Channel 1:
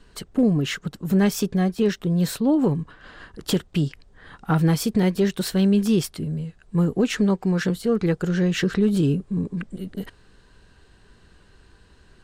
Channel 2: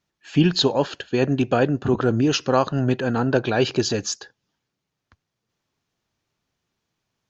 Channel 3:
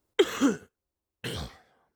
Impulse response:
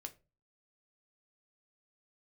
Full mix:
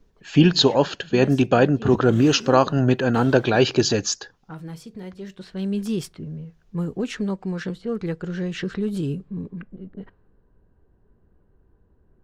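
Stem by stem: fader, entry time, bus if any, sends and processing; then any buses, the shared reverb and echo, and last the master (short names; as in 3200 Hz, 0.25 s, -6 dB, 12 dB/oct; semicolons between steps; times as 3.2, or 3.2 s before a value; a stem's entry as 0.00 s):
-7.0 dB, 0.00 s, send -10.5 dB, low-pass opened by the level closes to 630 Hz, open at -16 dBFS; auto duck -16 dB, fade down 0.20 s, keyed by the second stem
+2.5 dB, 0.00 s, no send, dry
-11.5 dB, 1.90 s, no send, per-bin compression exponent 0.6; limiter -19.5 dBFS, peak gain reduction 11 dB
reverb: on, RT60 0.30 s, pre-delay 5 ms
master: dry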